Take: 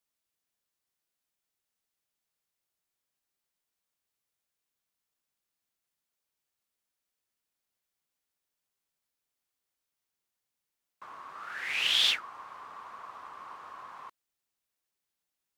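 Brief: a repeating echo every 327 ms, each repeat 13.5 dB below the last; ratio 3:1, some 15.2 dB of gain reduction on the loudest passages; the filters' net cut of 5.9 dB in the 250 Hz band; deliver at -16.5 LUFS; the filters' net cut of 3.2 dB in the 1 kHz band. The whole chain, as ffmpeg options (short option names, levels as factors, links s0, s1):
-af "equalizer=f=250:t=o:g=-8,equalizer=f=1000:t=o:g=-3.5,acompressor=threshold=0.00708:ratio=3,aecho=1:1:327|654:0.211|0.0444,volume=25.1"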